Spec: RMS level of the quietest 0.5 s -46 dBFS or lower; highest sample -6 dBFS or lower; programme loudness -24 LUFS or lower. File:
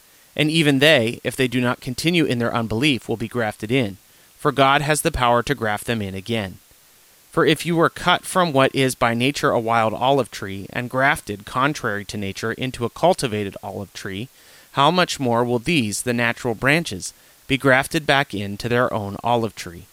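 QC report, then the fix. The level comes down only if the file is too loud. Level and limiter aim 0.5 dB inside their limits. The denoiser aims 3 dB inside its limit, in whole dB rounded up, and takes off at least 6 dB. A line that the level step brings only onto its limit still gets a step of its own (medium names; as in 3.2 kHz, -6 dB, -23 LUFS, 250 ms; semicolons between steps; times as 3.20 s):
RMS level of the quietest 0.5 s -52 dBFS: pass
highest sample -3.0 dBFS: fail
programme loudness -20.0 LUFS: fail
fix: trim -4.5 dB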